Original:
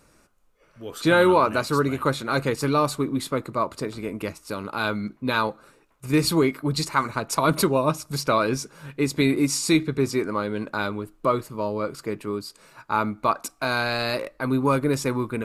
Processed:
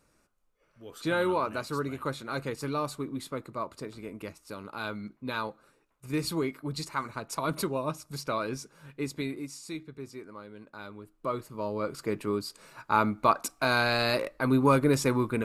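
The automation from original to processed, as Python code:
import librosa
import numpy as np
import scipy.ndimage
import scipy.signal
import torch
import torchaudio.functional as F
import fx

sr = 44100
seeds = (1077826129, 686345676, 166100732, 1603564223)

y = fx.gain(x, sr, db=fx.line((9.08, -10.0), (9.54, -19.0), (10.68, -19.0), (11.37, -9.0), (12.17, -1.0)))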